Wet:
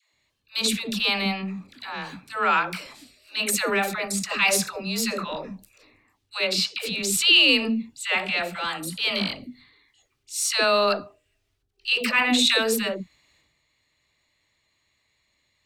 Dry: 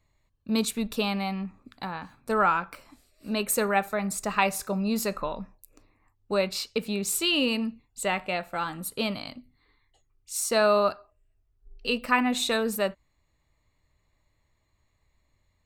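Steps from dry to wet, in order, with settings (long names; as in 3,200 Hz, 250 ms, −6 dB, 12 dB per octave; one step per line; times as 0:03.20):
meter weighting curve D
transient designer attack −8 dB, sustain +8 dB
all-pass dispersion lows, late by 138 ms, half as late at 490 Hz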